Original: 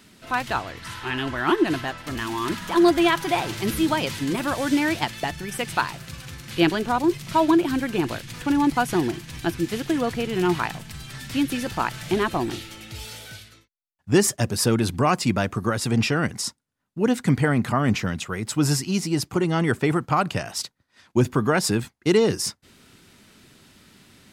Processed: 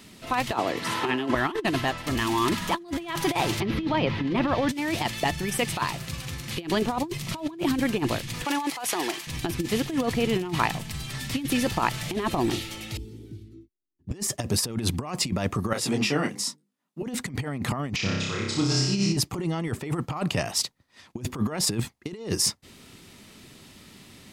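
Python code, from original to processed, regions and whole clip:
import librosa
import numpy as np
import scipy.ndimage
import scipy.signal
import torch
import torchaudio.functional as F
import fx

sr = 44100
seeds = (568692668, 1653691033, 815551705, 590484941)

y = fx.chain(x, sr, fx.highpass(hz=190.0, slope=12),
    fx.peak_eq(hz=370.0, db=8.5, octaves=2.8),
    fx.band_squash(depth_pct=40), at=(0.52, 1.35))
y = fx.chain(y, sr, fx.air_absorb(metres=290.0),
    fx.band_squash(depth_pct=100), at=(3.6, 4.69))
y = fx.chain(y, sr, fx.highpass(hz=680.0, slope=12),
    fx.over_compress(threshold_db=-31.0, ratio=-1.0), at=(8.45, 9.27))
y = fx.chain(y, sr, fx.curve_eq(hz=(190.0, 360.0, 560.0), db=(0, 12, -26)),
    fx.clip_hard(threshold_db=-29.0),
    fx.band_squash(depth_pct=40), at=(12.97, 14.11))
y = fx.chain(y, sr, fx.highpass(hz=160.0, slope=24),
    fx.hum_notches(base_hz=50, count=10),
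    fx.detune_double(cents=27), at=(15.73, 17.03))
y = fx.chain(y, sr, fx.ladder_lowpass(hz=6500.0, resonance_pct=35),
    fx.room_flutter(wall_m=5.2, rt60_s=1.1), at=(17.96, 19.17))
y = fx.peak_eq(y, sr, hz=1500.0, db=-8.5, octaves=0.22)
y = fx.over_compress(y, sr, threshold_db=-25.0, ratio=-0.5)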